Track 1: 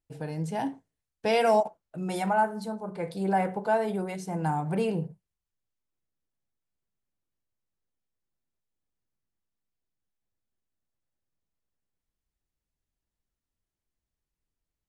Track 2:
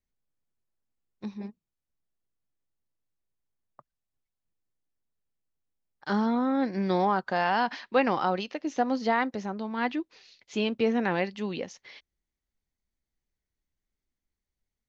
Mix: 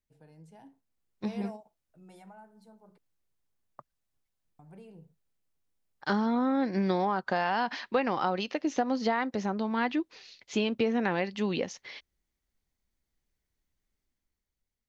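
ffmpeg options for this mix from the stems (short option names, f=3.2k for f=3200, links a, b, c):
-filter_complex "[0:a]acrossover=split=300[a][b];[b]acompressor=threshold=-32dB:ratio=2.5[c];[a][c]amix=inputs=2:normalize=0,volume=-14.5dB,asplit=3[d][e][f];[d]atrim=end=2.98,asetpts=PTS-STARTPTS,afade=t=out:st=2.976:d=0.004:c=hsin[g];[e]atrim=start=2.98:end=4.59,asetpts=PTS-STARTPTS,volume=0[h];[f]atrim=start=4.59,asetpts=PTS-STARTPTS,afade=t=in:d=0.004:c=hsin[i];[g][h][i]concat=n=3:v=0:a=1[j];[1:a]dynaudnorm=f=160:g=11:m=6dB,volume=-2dB,asplit=2[k][l];[l]apad=whole_len=656239[m];[j][m]sidechaingate=range=-7dB:threshold=-43dB:ratio=16:detection=peak[n];[n][k]amix=inputs=2:normalize=0,acompressor=threshold=-24dB:ratio=5"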